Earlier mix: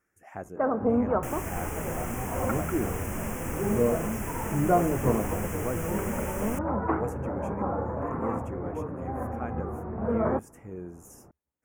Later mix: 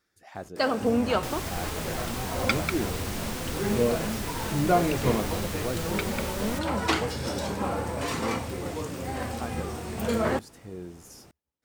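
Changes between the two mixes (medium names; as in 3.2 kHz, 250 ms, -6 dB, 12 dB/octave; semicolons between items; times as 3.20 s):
first sound: remove low-pass 1.3 kHz 24 dB/octave; master: remove Butterworth band-stop 4.1 kHz, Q 1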